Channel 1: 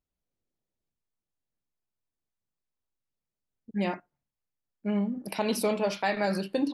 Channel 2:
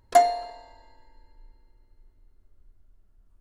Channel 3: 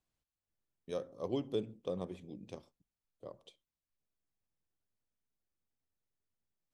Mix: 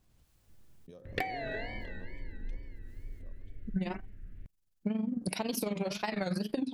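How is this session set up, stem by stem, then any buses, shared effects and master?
+2.0 dB, 0.00 s, bus A, no send, high shelf 2800 Hz +9 dB; AM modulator 22 Hz, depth 55%
+0.5 dB, 1.05 s, bus A, no send, graphic EQ 125/250/500/1000/2000/4000/8000 Hz +10/+7/+8/-11/+10/-8/-10 dB; band shelf 2600 Hz +13.5 dB
-19.5 dB, 0.00 s, no bus, no send, backwards sustainer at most 25 dB/s
bus A: 0.0 dB, wow and flutter 140 cents; compressor, threshold -29 dBFS, peak gain reduction 18.5 dB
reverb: off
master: low shelf 280 Hz +12 dB; compressor 6:1, threshold -29 dBFS, peak gain reduction 8.5 dB

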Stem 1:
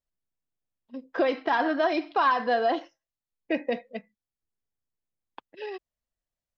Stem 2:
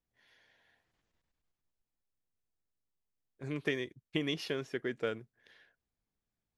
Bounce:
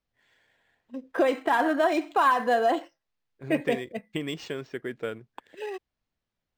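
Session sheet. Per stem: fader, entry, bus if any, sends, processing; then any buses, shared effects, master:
+1.5 dB, 0.00 s, no send, dry
+2.0 dB, 0.00 s, no send, dry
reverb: off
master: decimation joined by straight lines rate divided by 4×

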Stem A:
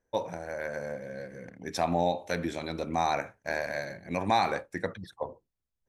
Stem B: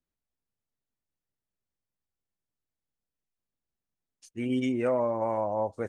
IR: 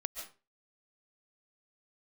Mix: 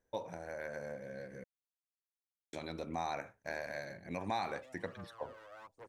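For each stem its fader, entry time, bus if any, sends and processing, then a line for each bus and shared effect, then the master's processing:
-2.5 dB, 0.00 s, muted 1.44–2.53, no send, dry
-20.0 dB, 0.00 s, no send, one-sided fold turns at -32.5 dBFS; HPF 450 Hz 6 dB/oct; phaser 1.2 Hz, delay 2.2 ms, feedback 64%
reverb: off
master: compressor 1.5:1, threshold -48 dBFS, peak gain reduction 9 dB

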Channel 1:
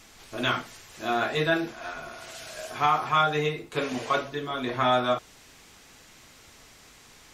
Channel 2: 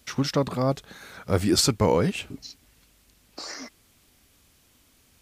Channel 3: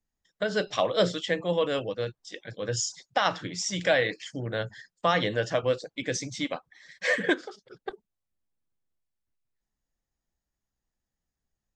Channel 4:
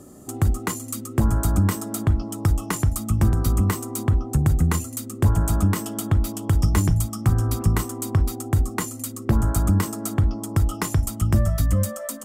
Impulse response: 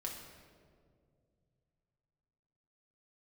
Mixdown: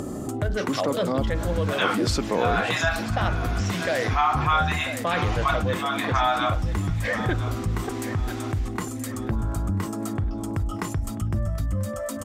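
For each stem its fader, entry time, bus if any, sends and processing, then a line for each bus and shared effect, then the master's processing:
+1.0 dB, 1.35 s, no send, echo send -16.5 dB, steep high-pass 670 Hz 72 dB/oct
-5.5 dB, 0.50 s, no send, echo send -23 dB, HPF 190 Hz 24 dB/oct
-6.5 dB, 0.00 s, no send, echo send -16 dB, Wiener smoothing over 9 samples
-11.5 dB, 0.00 s, no send, echo send -22.5 dB, upward compressor, threshold -21 dBFS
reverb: off
echo: feedback echo 0.99 s, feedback 37%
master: LPF 3100 Hz 6 dB/oct; fast leveller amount 50%

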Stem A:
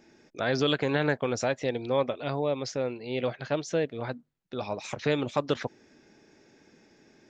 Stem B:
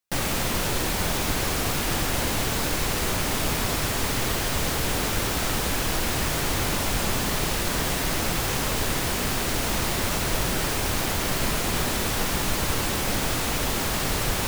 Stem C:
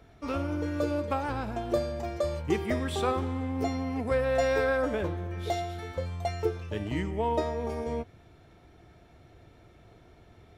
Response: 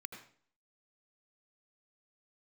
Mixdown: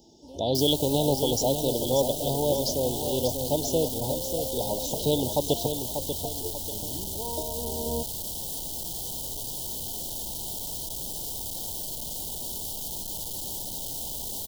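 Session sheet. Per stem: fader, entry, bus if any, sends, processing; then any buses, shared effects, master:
+2.5 dB, 0.00 s, no send, echo send -7.5 dB, dry
-14.0 dB, 0.55 s, no send, no echo send, infinite clipping
-10.0 dB, 0.00 s, no send, no echo send, AGC gain up to 13 dB; auto duck -10 dB, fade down 0.60 s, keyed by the first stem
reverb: off
echo: feedback echo 0.589 s, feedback 40%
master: Chebyshev band-stop 930–3000 Hz, order 5; high shelf 4500 Hz +9.5 dB

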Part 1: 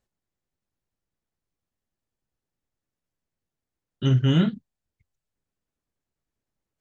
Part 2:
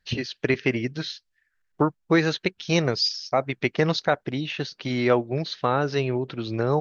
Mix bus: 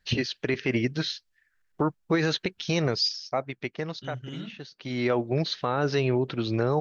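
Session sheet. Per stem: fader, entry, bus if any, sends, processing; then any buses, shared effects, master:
-17.0 dB, 0.00 s, no send, high shelf 2300 Hz +9 dB; limiter -13 dBFS, peak gain reduction 4 dB
+2.0 dB, 0.00 s, no send, auto duck -15 dB, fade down 1.30 s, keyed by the first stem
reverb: off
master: limiter -14.5 dBFS, peak gain reduction 9 dB

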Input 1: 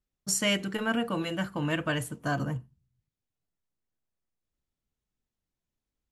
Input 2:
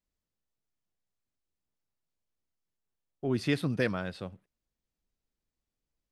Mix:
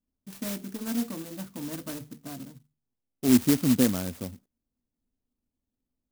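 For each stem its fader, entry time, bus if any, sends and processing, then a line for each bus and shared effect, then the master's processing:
-9.5 dB, 0.00 s, no send, notches 50/100/150 Hz; auto duck -22 dB, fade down 1.10 s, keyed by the second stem
+0.5 dB, 0.00 s, no send, bell 85 Hz +6 dB 0.38 oct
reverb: off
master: low-pass opened by the level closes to 1400 Hz, open at -28 dBFS; bell 250 Hz +14.5 dB 0.42 oct; clock jitter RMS 0.15 ms

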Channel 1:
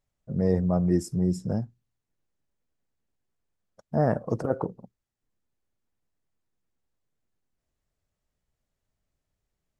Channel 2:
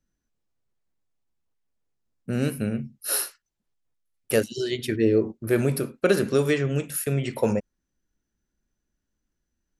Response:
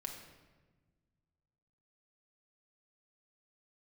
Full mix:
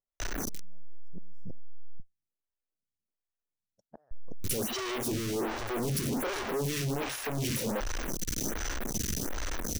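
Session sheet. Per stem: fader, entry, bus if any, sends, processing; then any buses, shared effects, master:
-12.0 dB, 0.00 s, no send, flipped gate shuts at -18 dBFS, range -30 dB
-1.0 dB, 0.20 s, muted 2–4.11, no send, infinite clipping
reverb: off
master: bell 5900 Hz +5 dB 0.23 oct; photocell phaser 1.3 Hz

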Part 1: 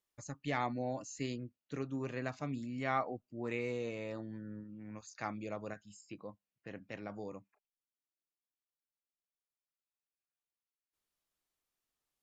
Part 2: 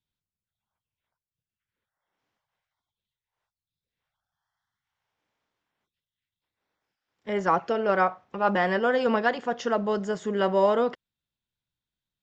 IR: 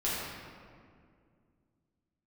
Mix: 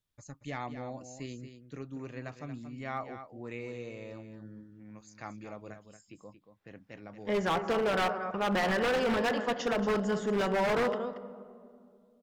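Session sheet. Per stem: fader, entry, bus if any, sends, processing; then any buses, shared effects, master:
-3.5 dB, 0.00 s, no send, echo send -10 dB, dry
-2.5 dB, 0.00 s, send -17.5 dB, echo send -11 dB, limiter -16 dBFS, peak gain reduction 5 dB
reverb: on, RT60 2.2 s, pre-delay 6 ms
echo: echo 0.23 s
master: low shelf 68 Hz +9.5 dB; wavefolder -23 dBFS

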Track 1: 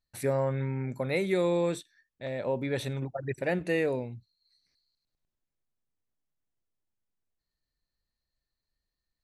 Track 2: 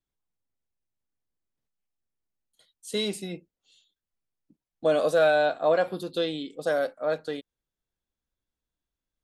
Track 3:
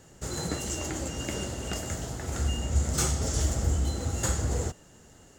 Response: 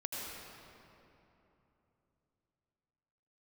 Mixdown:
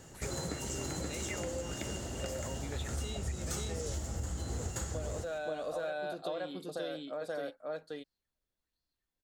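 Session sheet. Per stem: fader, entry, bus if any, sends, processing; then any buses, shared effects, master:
-12.5 dB, 0.00 s, bus A, no send, no echo send, LFO bell 1.3 Hz 450–5200 Hz +18 dB
-3.0 dB, 0.10 s, bus A, no send, echo send -7 dB, dry
+1.5 dB, 0.00 s, no bus, no send, echo send -6 dB, auto duck -15 dB, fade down 1.95 s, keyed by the first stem
bus A: 0.0 dB, compressor 3:1, threshold -38 dBFS, peak gain reduction 13.5 dB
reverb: off
echo: echo 0.527 s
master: compressor 5:1, threshold -34 dBFS, peak gain reduction 10 dB

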